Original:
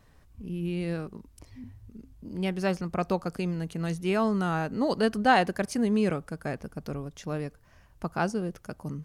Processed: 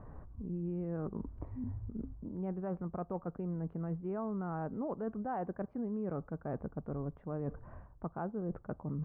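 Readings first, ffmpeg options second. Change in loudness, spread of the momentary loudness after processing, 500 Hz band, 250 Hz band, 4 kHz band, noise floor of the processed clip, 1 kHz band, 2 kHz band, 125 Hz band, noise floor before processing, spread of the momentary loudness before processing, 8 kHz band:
−10.5 dB, 6 LU, −10.0 dB, −9.0 dB, below −40 dB, −59 dBFS, −13.5 dB, −22.5 dB, −6.0 dB, −58 dBFS, 17 LU, below −35 dB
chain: -af "lowpass=frequency=1200:width=0.5412,lowpass=frequency=1200:width=1.3066,alimiter=limit=-22dB:level=0:latency=1:release=346,areverse,acompressor=threshold=-47dB:ratio=5,areverse,volume=10dB"

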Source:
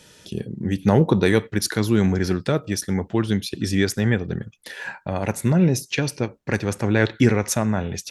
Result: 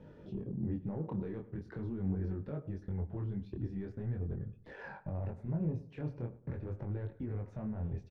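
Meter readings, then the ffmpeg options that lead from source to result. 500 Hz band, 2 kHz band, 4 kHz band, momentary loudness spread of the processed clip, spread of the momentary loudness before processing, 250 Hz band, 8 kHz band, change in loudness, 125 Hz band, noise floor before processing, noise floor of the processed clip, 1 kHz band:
−21.5 dB, −27.5 dB, below −35 dB, 7 LU, 13 LU, −18.0 dB, below −40 dB, −18.0 dB, −14.5 dB, −54 dBFS, −57 dBFS, −23.0 dB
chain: -filter_complex "[0:a]asubboost=boost=3:cutoff=110,acompressor=threshold=-32dB:ratio=6,alimiter=level_in=6.5dB:limit=-24dB:level=0:latency=1:release=13,volume=-6.5dB,flanger=delay=0.1:depth=7.1:regen=-56:speed=1.7:shape=triangular,adynamicsmooth=sensitivity=1.5:basefreq=680,flanger=delay=20:depth=6.3:speed=0.42,asplit=2[link_01][link_02];[link_02]adelay=106,lowpass=frequency=2000:poles=1,volume=-17dB,asplit=2[link_03][link_04];[link_04]adelay=106,lowpass=frequency=2000:poles=1,volume=0.36,asplit=2[link_05][link_06];[link_06]adelay=106,lowpass=frequency=2000:poles=1,volume=0.36[link_07];[link_03][link_05][link_07]amix=inputs=3:normalize=0[link_08];[link_01][link_08]amix=inputs=2:normalize=0,volume=9.5dB"

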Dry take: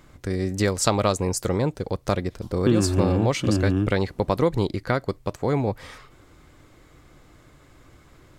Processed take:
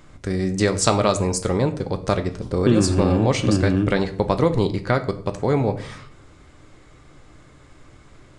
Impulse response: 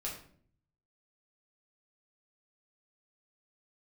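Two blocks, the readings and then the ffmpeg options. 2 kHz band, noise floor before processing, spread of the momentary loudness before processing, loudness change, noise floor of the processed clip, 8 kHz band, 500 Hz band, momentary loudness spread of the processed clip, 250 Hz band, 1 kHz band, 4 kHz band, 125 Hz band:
+3.0 dB, −53 dBFS, 8 LU, +3.0 dB, −49 dBFS, +2.5 dB, +3.0 dB, 7 LU, +3.0 dB, +3.0 dB, +3.0 dB, +2.5 dB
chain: -filter_complex "[0:a]aresample=22050,aresample=44100,asplit=2[link_01][link_02];[1:a]atrim=start_sample=2205[link_03];[link_02][link_03]afir=irnorm=-1:irlink=0,volume=-5dB[link_04];[link_01][link_04]amix=inputs=2:normalize=0"

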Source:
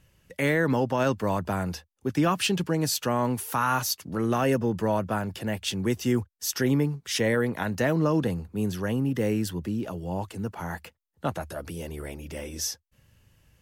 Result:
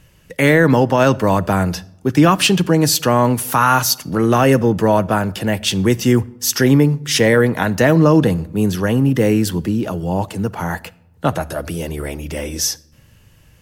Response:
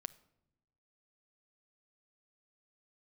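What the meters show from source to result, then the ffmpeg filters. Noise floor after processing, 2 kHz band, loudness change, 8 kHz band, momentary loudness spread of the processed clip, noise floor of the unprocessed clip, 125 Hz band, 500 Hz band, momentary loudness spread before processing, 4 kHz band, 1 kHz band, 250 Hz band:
−51 dBFS, +11.0 dB, +11.5 dB, +11.5 dB, 12 LU, −70 dBFS, +12.0 dB, +11.5 dB, 12 LU, +11.5 dB, +11.5 dB, +11.5 dB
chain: -filter_complex "[0:a]asplit=2[link_01][link_02];[1:a]atrim=start_sample=2205[link_03];[link_02][link_03]afir=irnorm=-1:irlink=0,volume=12dB[link_04];[link_01][link_04]amix=inputs=2:normalize=0"

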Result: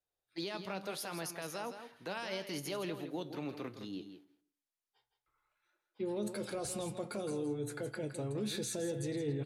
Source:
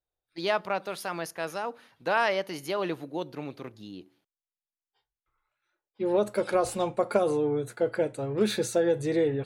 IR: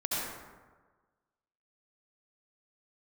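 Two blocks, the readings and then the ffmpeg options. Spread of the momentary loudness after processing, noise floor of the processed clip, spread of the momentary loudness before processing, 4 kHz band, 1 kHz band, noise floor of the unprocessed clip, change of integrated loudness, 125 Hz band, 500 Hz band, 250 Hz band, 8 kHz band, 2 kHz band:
8 LU, below −85 dBFS, 13 LU, −6.0 dB, −14.5 dB, below −85 dBFS, −11.0 dB, −4.5 dB, −13.0 dB, −7.5 dB, −2.5 dB, −12.5 dB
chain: -filter_complex "[0:a]lowshelf=frequency=65:gain=-10,acrossover=split=310|3000[link_01][link_02][link_03];[link_02]acompressor=threshold=-39dB:ratio=4[link_04];[link_01][link_04][link_03]amix=inputs=3:normalize=0,alimiter=level_in=6dB:limit=-24dB:level=0:latency=1:release=31,volume=-6dB,flanger=delay=6.8:depth=3.9:regen=77:speed=0.75:shape=sinusoidal,aecho=1:1:164:0.335,asplit=2[link_05][link_06];[1:a]atrim=start_sample=2205,afade=type=out:start_time=0.42:duration=0.01,atrim=end_sample=18963[link_07];[link_06][link_07]afir=irnorm=-1:irlink=0,volume=-30dB[link_08];[link_05][link_08]amix=inputs=2:normalize=0,aresample=32000,aresample=44100,volume=3.5dB"

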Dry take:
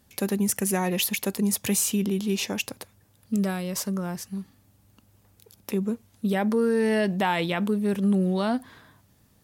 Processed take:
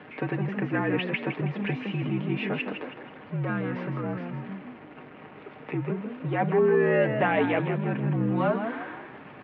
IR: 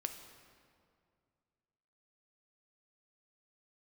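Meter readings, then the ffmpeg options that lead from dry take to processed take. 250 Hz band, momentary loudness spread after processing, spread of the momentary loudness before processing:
−4.0 dB, 21 LU, 9 LU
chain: -filter_complex "[0:a]aeval=exprs='val(0)+0.5*0.0188*sgn(val(0))':channel_layout=same,aecho=1:1:6.1:0.58,asplit=2[link_01][link_02];[link_02]asplit=5[link_03][link_04][link_05][link_06][link_07];[link_03]adelay=161,afreqshift=54,volume=-8dB[link_08];[link_04]adelay=322,afreqshift=108,volume=-16dB[link_09];[link_05]adelay=483,afreqshift=162,volume=-23.9dB[link_10];[link_06]adelay=644,afreqshift=216,volume=-31.9dB[link_11];[link_07]adelay=805,afreqshift=270,volume=-39.8dB[link_12];[link_08][link_09][link_10][link_11][link_12]amix=inputs=5:normalize=0[link_13];[link_01][link_13]amix=inputs=2:normalize=0,highpass=frequency=250:width_type=q:width=0.5412,highpass=frequency=250:width_type=q:width=1.307,lowpass=frequency=2600:width_type=q:width=0.5176,lowpass=frequency=2600:width_type=q:width=0.7071,lowpass=frequency=2600:width_type=q:width=1.932,afreqshift=-55"

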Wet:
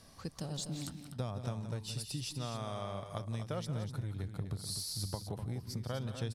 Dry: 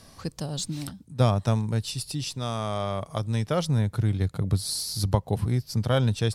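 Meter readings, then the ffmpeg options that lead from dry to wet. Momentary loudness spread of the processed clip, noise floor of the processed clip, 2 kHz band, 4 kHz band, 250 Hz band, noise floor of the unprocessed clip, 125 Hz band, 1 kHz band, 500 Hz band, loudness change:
3 LU, −51 dBFS, −12.5 dB, −9.5 dB, −12.5 dB, −53 dBFS, −13.5 dB, −13.0 dB, −13.5 dB, −12.5 dB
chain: -af "acompressor=threshold=-28dB:ratio=6,aecho=1:1:160|176|248:0.119|0.266|0.355,volume=-7.5dB"

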